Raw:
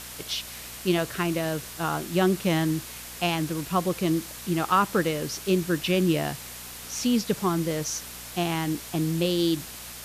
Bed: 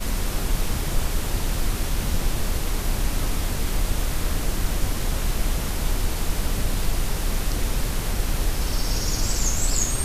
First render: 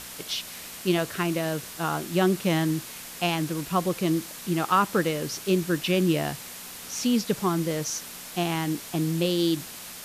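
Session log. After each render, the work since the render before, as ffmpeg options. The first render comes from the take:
-af "bandreject=f=60:t=h:w=4,bandreject=f=120:t=h:w=4"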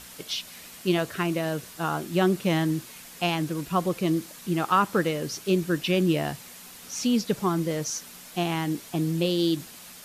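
-af "afftdn=nr=6:nf=-41"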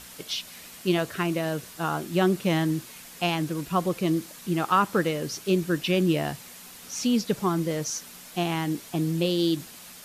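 -af anull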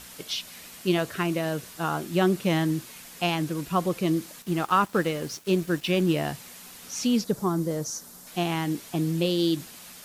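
-filter_complex "[0:a]asettb=1/sr,asplit=3[s0][s1][s2];[s0]atrim=end=4.424[s3];[s1]atrim=start=4.42:end=6.18,asetpts=PTS-STARTPTS,afade=t=in:d=0.004:c=qsin,afade=t=out:st=1.756:d=0.004:c=qsin,aeval=exprs='sgn(val(0))*max(abs(val(0))-0.00596,0)':c=same[s4];[s2]atrim=start=6.176[s5];[s3][s4]acrossfade=d=0.004:c1=hsin:c2=qsin[s6];[s6][s5]acrossfade=d=0.004:c1=qsin:c2=hsin,asettb=1/sr,asplit=3[s7][s8][s9];[s7]atrim=end=7.244[s10];[s8]atrim=start=7.24:end=8.27,asetpts=PTS-STARTPTS,afade=t=in:d=0.004:c=qsin,afade=t=out:st=1.026:d=0.004:c=qsin,equalizer=f=2600:t=o:w=1.2:g=-13[s11];[s9]atrim=start=8.266[s12];[s10][s11]acrossfade=d=0.004:c1=hsin:c2=qsin[s13];[s13][s12]acrossfade=d=0.004:c1=qsin:c2=hsin"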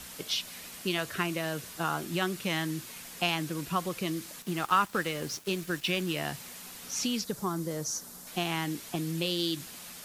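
-filter_complex "[0:a]acrossover=split=100|1100|5500[s0][s1][s2][s3];[s0]alimiter=level_in=22.4:limit=0.0631:level=0:latency=1,volume=0.0447[s4];[s1]acompressor=threshold=0.0282:ratio=6[s5];[s4][s5][s2][s3]amix=inputs=4:normalize=0"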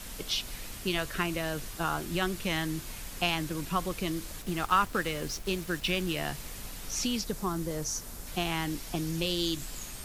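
-filter_complex "[1:a]volume=0.0944[s0];[0:a][s0]amix=inputs=2:normalize=0"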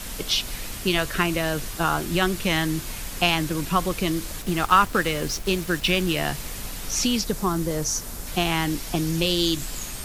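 -af "volume=2.51"

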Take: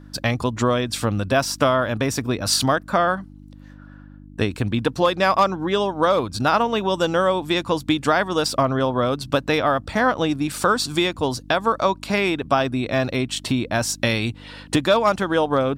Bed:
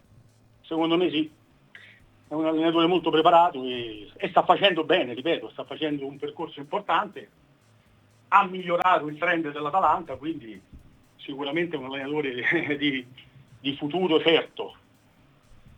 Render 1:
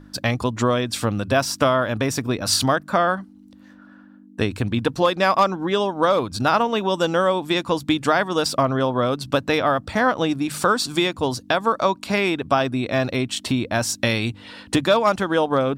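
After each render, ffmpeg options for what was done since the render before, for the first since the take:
-af "bandreject=f=50:t=h:w=4,bandreject=f=100:t=h:w=4,bandreject=f=150:t=h:w=4"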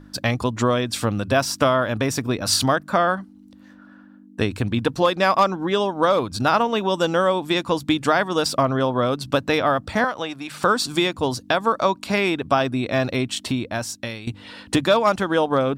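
-filter_complex "[0:a]asettb=1/sr,asplit=3[s0][s1][s2];[s0]atrim=end=10.044[s3];[s1]atrim=start=10.04:end=10.63,asetpts=PTS-STARTPTS,afade=t=in:d=0.004:c=qsin,afade=t=out:st=0.586:d=0.004:c=qsin,acrossover=split=550|4100[s4][s5][s6];[s4]acompressor=threshold=0.0158:ratio=4[s7];[s5]acompressor=threshold=0.0794:ratio=4[s8];[s6]acompressor=threshold=0.00501:ratio=4[s9];[s7][s8][s9]amix=inputs=3:normalize=0[s10];[s2]atrim=start=10.626[s11];[s3][s10]acrossfade=d=0.004:c1=hsin:c2=qsin[s12];[s12][s11]acrossfade=d=0.004:c1=qsin:c2=hsin,asplit=2[s13][s14];[s13]atrim=end=14.27,asetpts=PTS-STARTPTS,afade=t=out:st=13.28:d=0.99:silence=0.16788[s15];[s14]atrim=start=14.27,asetpts=PTS-STARTPTS,afade=t=in:d=0.004:c=hsin:silence=0.16788[s16];[s15][s16]concat=n=2:v=0:a=1"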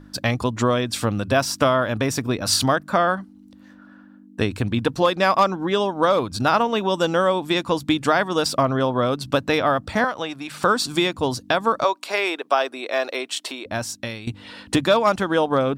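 -filter_complex "[0:a]asettb=1/sr,asplit=3[s0][s1][s2];[s0]atrim=end=11.844[s3];[s1]atrim=start=11.84:end=13.66,asetpts=PTS-STARTPTS,afade=t=in:d=0.004:c=qsin,afade=t=out:st=1.816:d=0.004:c=qsin,highpass=f=390:w=0.5412,highpass=f=390:w=1.3066[s4];[s2]atrim=start=13.656[s5];[s3][s4]acrossfade=d=0.004:c1=hsin:c2=qsin[s6];[s6][s5]acrossfade=d=0.004:c1=qsin:c2=hsin"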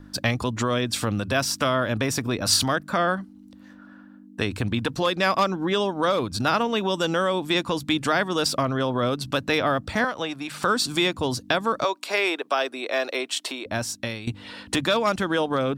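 -filter_complex "[0:a]acrossover=split=650|1200[s0][s1][s2];[s0]alimiter=limit=0.119:level=0:latency=1[s3];[s1]acompressor=threshold=0.0158:ratio=6[s4];[s3][s4][s2]amix=inputs=3:normalize=0"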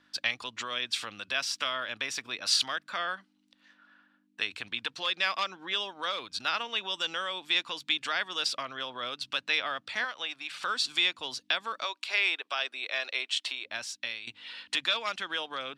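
-af "bandpass=f=3000:t=q:w=1.3:csg=0"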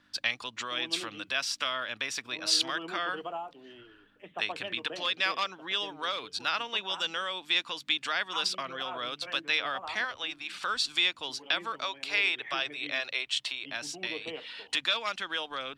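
-filter_complex "[1:a]volume=0.0944[s0];[0:a][s0]amix=inputs=2:normalize=0"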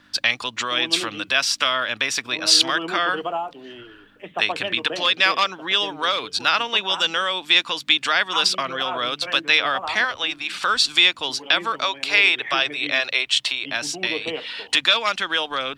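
-af "volume=3.55,alimiter=limit=0.794:level=0:latency=1"

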